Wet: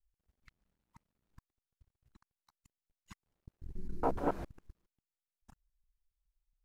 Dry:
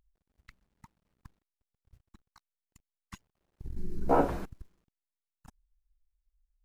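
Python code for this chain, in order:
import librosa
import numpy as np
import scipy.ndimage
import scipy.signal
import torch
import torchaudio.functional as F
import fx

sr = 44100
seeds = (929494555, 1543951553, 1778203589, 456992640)

y = fx.local_reverse(x, sr, ms=139.0)
y = fx.wow_flutter(y, sr, seeds[0], rate_hz=2.1, depth_cents=27.0)
y = fx.doppler_dist(y, sr, depth_ms=0.19)
y = F.gain(torch.from_numpy(y), -6.5).numpy()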